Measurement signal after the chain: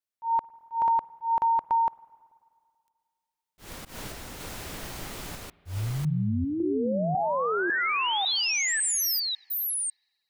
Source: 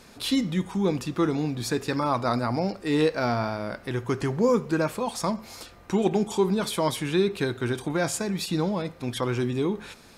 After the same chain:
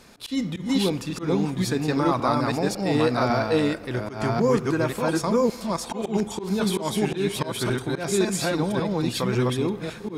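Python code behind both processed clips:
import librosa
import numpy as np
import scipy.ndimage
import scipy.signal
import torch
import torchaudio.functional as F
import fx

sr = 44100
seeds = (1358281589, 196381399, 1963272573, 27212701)

y = fx.reverse_delay(x, sr, ms=550, wet_db=0)
y = fx.auto_swell(y, sr, attack_ms=132.0)
y = fx.rev_spring(y, sr, rt60_s=2.2, pass_ms=(48, 54), chirp_ms=65, drr_db=20.0)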